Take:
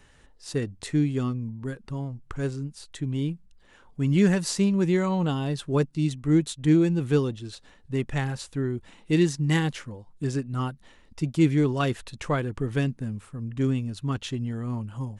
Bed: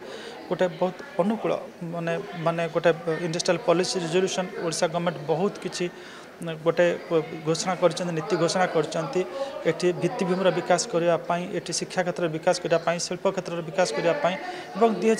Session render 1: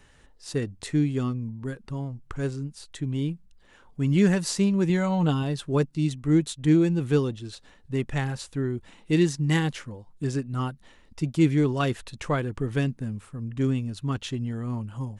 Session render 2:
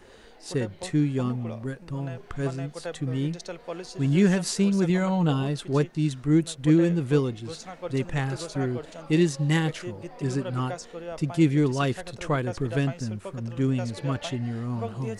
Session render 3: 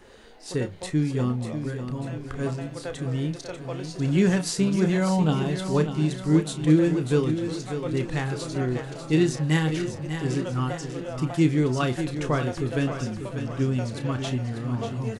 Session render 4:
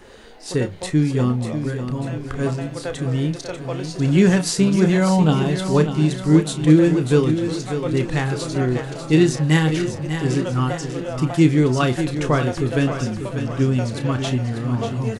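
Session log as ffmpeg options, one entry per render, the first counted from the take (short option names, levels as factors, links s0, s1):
-filter_complex "[0:a]asettb=1/sr,asplit=3[s0][s1][s2];[s0]atrim=end=4.894[s3];[s1]atrim=start=4.89:end=5.43,asetpts=PTS-STARTPTS,afade=t=in:d=0.004:c=qsin,afade=t=out:st=0.536:d=0.004:c=qsin,aecho=1:1:6.7:0.5,atrim=end_sample=23814[s4];[s2]atrim=start=5.426[s5];[s3][s4]acrossfade=d=0.004:c1=hsin:c2=qsin[s6];[s6][s5]acrossfade=d=0.004:c1=qsin:c2=hsin"
-filter_complex "[1:a]volume=0.188[s0];[0:a][s0]amix=inputs=2:normalize=0"
-filter_complex "[0:a]asplit=2[s0][s1];[s1]adelay=32,volume=0.316[s2];[s0][s2]amix=inputs=2:normalize=0,aecho=1:1:593|1186|1779|2372|2965|3558:0.355|0.177|0.0887|0.0444|0.0222|0.0111"
-af "volume=2,alimiter=limit=0.708:level=0:latency=1"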